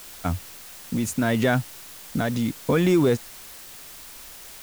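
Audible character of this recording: tremolo triangle 0.76 Hz, depth 50%; a quantiser's noise floor 8-bit, dither triangular

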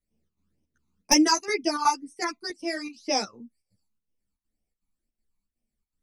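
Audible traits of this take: phasing stages 12, 2 Hz, lowest notch 530–1400 Hz; chopped level 2.7 Hz, depth 65%, duty 75%; a shimmering, thickened sound

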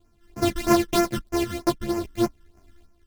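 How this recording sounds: a buzz of ramps at a fixed pitch in blocks of 128 samples; phasing stages 12, 3.2 Hz, lowest notch 710–3600 Hz; random-step tremolo 3.5 Hz; a shimmering, thickened sound

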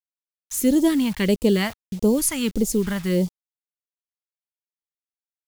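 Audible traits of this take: a quantiser's noise floor 8-bit, dither none; phasing stages 2, 1.6 Hz, lowest notch 390–1600 Hz

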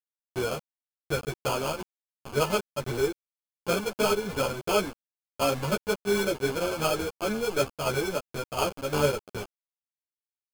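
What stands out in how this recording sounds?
a quantiser's noise floor 6-bit, dither none; tremolo saw down 2.8 Hz, depth 50%; aliases and images of a low sample rate 1.9 kHz, jitter 0%; a shimmering, thickened sound

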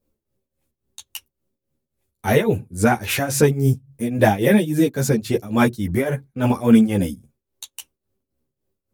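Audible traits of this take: tremolo triangle 3.6 Hz, depth 85%; a shimmering, thickened sound

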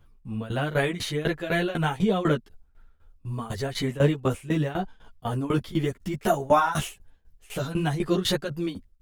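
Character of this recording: tremolo saw down 4 Hz, depth 90%; a shimmering, thickened sound

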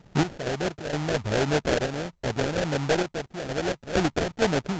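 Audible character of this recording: a buzz of ramps at a fixed pitch in blocks of 8 samples; random-step tremolo 4.3 Hz, depth 75%; aliases and images of a low sample rate 1.1 kHz, jitter 20%; SBC

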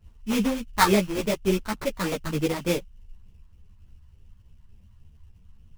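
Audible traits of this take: phasing stages 4, 3.4 Hz, lowest notch 450–2200 Hz; aliases and images of a low sample rate 2.9 kHz, jitter 20%; a shimmering, thickened sound

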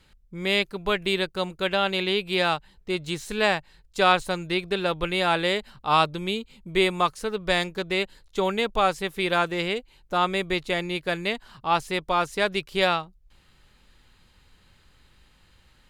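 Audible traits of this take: noise floor -60 dBFS; spectral tilt -2.0 dB/octave

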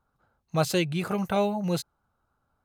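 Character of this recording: noise floor -77 dBFS; spectral tilt -5.5 dB/octave

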